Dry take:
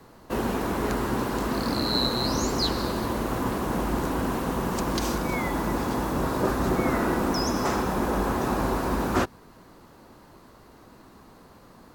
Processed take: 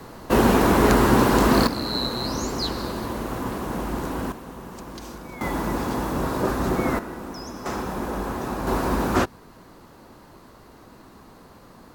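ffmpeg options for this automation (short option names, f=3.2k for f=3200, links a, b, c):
-af "asetnsamples=n=441:p=0,asendcmd='1.67 volume volume -1.5dB;4.32 volume volume -11dB;5.41 volume volume 1dB;6.99 volume volume -10dB;7.66 volume volume -3dB;8.67 volume volume 3dB',volume=10dB"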